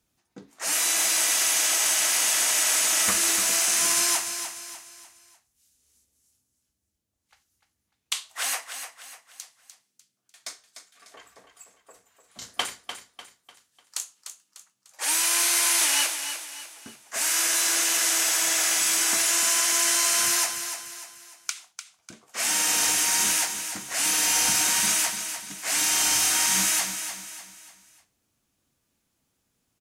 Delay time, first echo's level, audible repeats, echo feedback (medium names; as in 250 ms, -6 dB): 298 ms, -9.0 dB, 4, 40%